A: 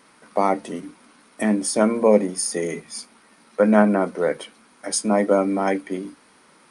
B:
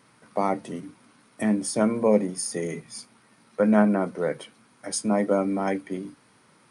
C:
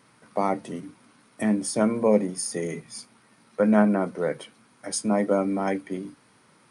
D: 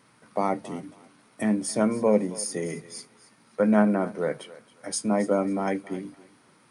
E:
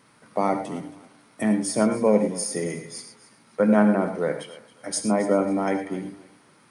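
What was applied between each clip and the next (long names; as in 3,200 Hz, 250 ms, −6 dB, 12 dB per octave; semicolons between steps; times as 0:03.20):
parametric band 120 Hz +15 dB 0.78 octaves; level −5.5 dB
no processing that can be heard
feedback echo with a high-pass in the loop 272 ms, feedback 26%, high-pass 420 Hz, level −17 dB; level −1 dB
reverb whose tail is shaped and stops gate 130 ms rising, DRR 8 dB; level +2 dB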